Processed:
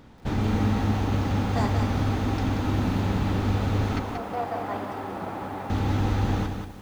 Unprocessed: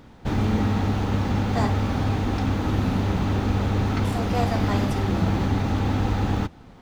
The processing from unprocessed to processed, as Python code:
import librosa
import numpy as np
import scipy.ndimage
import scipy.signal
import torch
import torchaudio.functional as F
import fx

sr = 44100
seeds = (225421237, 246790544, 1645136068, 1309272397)

y = fx.bandpass_q(x, sr, hz=830.0, q=0.92, at=(3.99, 5.7))
y = fx.echo_crushed(y, sr, ms=182, feedback_pct=35, bits=8, wet_db=-6.0)
y = y * 10.0 ** (-2.5 / 20.0)